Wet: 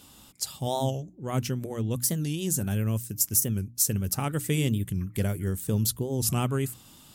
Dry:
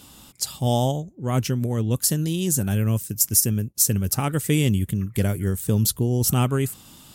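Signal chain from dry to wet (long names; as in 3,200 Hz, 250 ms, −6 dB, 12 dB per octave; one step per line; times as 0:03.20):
mains-hum notches 60/120/180/240/300 Hz
wow of a warped record 45 rpm, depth 160 cents
level −5 dB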